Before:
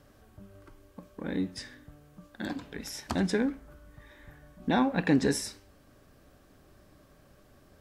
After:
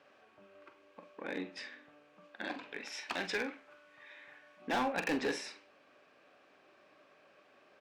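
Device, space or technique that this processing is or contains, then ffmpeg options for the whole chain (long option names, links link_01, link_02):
megaphone: -filter_complex "[0:a]asettb=1/sr,asplit=3[link_01][link_02][link_03];[link_01]atrim=end=2.924[link_04];[link_02]atrim=start=2.92:end=4.62,asetpts=PTS-STARTPTS,afade=type=in:duration=0.004:curve=qsin,afade=type=out:start_time=1.696:duration=0.004:curve=qsin,tiltshelf=frequency=1300:gain=-4.5[link_05];[link_03]atrim=start=4.616[link_06];[link_04][link_05]acrossfade=duration=0.004:curve1=hsin:curve2=qsin[link_07];[link_07][link_06]acrossfade=duration=0.004:curve1=qsin:curve2=hsin,highpass=490,lowpass=3600,equalizer=frequency=2500:width_type=o:width=0.32:gain=9,asoftclip=type=hard:threshold=-28.5dB,asplit=2[link_08][link_09];[link_09]adelay=44,volume=-10dB[link_10];[link_08][link_10]amix=inputs=2:normalize=0"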